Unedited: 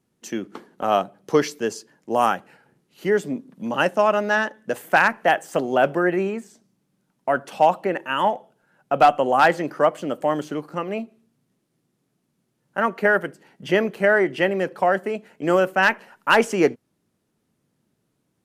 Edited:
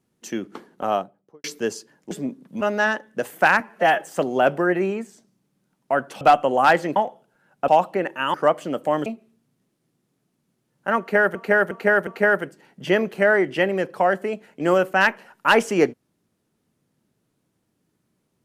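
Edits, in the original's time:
0:00.69–0:01.44: fade out and dull
0:02.11–0:03.18: remove
0:03.68–0:04.12: remove
0:05.11–0:05.39: time-stretch 1.5×
0:07.58–0:08.24: swap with 0:08.96–0:09.71
0:10.43–0:10.96: remove
0:12.89–0:13.25: repeat, 4 plays

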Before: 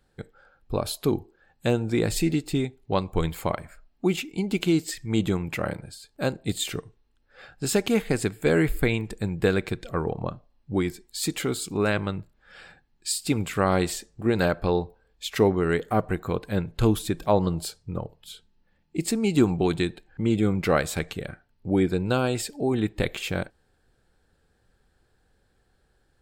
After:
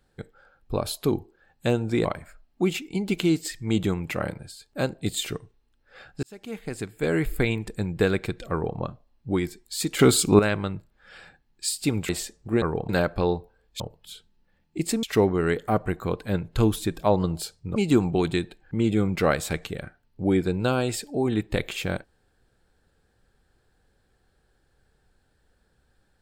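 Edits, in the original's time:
0:02.05–0:03.48: remove
0:07.66–0:08.94: fade in
0:09.94–0:10.21: duplicate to 0:14.35
0:11.42–0:11.82: clip gain +10.5 dB
0:13.52–0:13.82: remove
0:17.99–0:19.22: move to 0:15.26

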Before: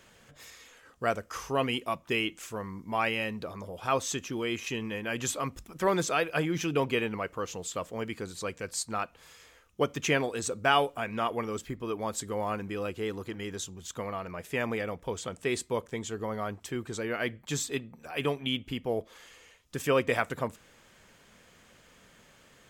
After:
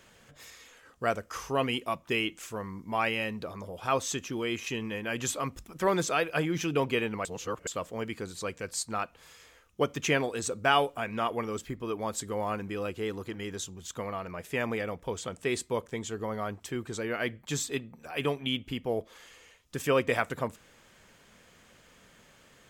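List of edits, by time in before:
0:07.25–0:07.67: reverse

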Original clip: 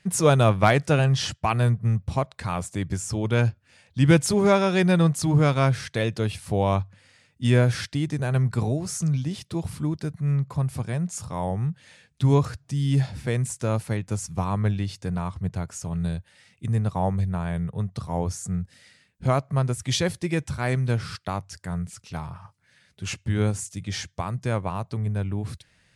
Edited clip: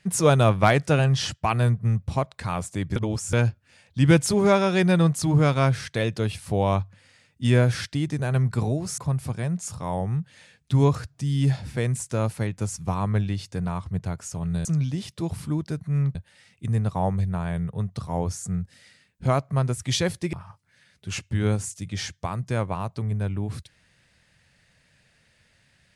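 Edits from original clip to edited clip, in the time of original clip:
0:02.96–0:03.33: reverse
0:08.98–0:10.48: move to 0:16.15
0:20.33–0:22.28: remove

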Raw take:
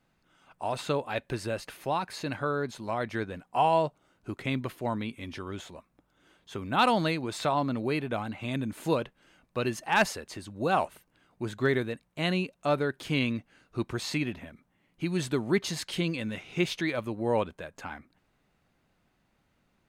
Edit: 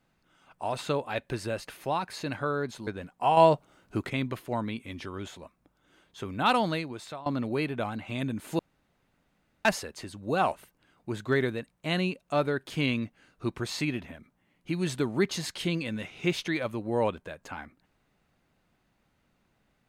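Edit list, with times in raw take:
0:02.87–0:03.20: remove
0:03.70–0:04.43: clip gain +6 dB
0:06.59–0:07.59: fade out equal-power, to −21 dB
0:08.92–0:09.98: fill with room tone

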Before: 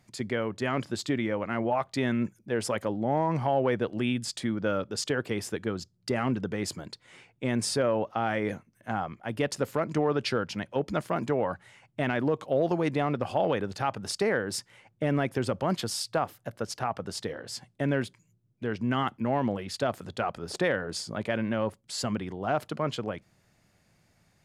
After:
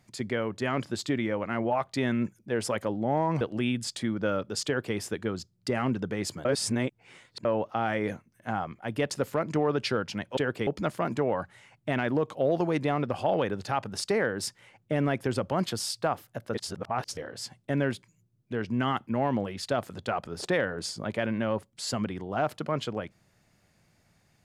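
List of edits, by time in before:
0:03.41–0:03.82: remove
0:05.07–0:05.37: duplicate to 0:10.78
0:06.86–0:07.86: reverse
0:16.65–0:17.28: reverse

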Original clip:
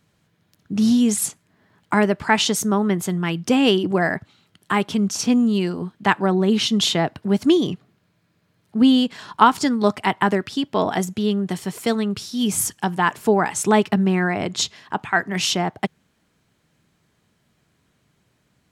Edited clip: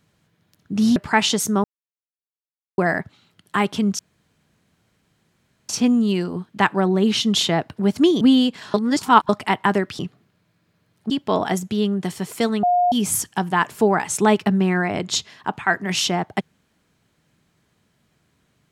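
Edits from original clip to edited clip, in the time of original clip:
0:00.96–0:02.12: remove
0:02.80–0:03.94: silence
0:05.15: splice in room tone 1.70 s
0:07.67–0:08.78: move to 0:10.56
0:09.31–0:09.86: reverse
0:12.09–0:12.38: beep over 713 Hz −14 dBFS

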